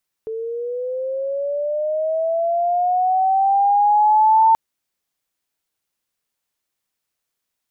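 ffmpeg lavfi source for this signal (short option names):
-f lavfi -i "aevalsrc='pow(10,(-24+14.5*t/4.28)/20)*sin(2*PI*(440*t+460*t*t/(2*4.28)))':d=4.28:s=44100"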